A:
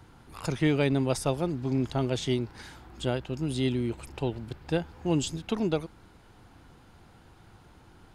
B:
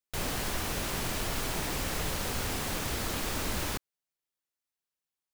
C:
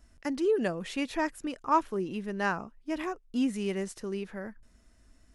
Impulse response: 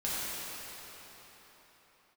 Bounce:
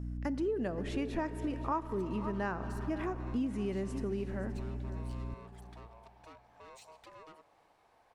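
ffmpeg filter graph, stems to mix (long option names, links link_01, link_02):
-filter_complex "[0:a]acompressor=threshold=-35dB:ratio=2,aeval=exprs='val(0)*sin(2*PI*790*n/s)':channel_layout=same,asoftclip=type=tanh:threshold=-38.5dB,adelay=1550,volume=-11dB,asplit=2[link_01][link_02];[link_02]volume=-23dB[link_03];[2:a]highshelf=frequency=2100:gain=-11.5,aeval=exprs='val(0)+0.01*(sin(2*PI*60*n/s)+sin(2*PI*2*60*n/s)/2+sin(2*PI*3*60*n/s)/3+sin(2*PI*4*60*n/s)/4+sin(2*PI*5*60*n/s)/5)':channel_layout=same,volume=2dB,asplit=3[link_04][link_05][link_06];[link_05]volume=-20dB[link_07];[link_06]volume=-15.5dB[link_08];[3:a]atrim=start_sample=2205[link_09];[link_03][link_07]amix=inputs=2:normalize=0[link_10];[link_10][link_09]afir=irnorm=-1:irlink=0[link_11];[link_08]aecho=0:1:525:1[link_12];[link_01][link_04][link_11][link_12]amix=inputs=4:normalize=0,acompressor=threshold=-32dB:ratio=4"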